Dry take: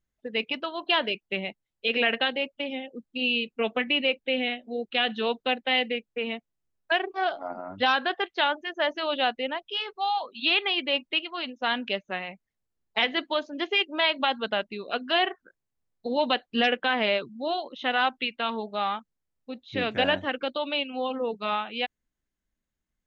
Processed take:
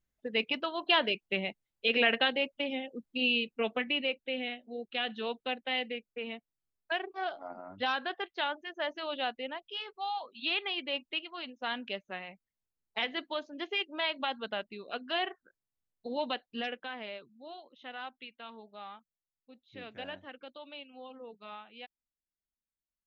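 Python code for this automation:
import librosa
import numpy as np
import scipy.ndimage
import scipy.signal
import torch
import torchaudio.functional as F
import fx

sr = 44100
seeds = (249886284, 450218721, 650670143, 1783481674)

y = fx.gain(x, sr, db=fx.line((3.2, -2.0), (4.27, -8.5), (16.2, -8.5), (17.12, -18.0)))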